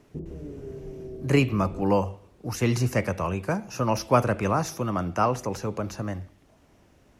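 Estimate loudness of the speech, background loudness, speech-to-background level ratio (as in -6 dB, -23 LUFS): -26.0 LUFS, -40.5 LUFS, 14.5 dB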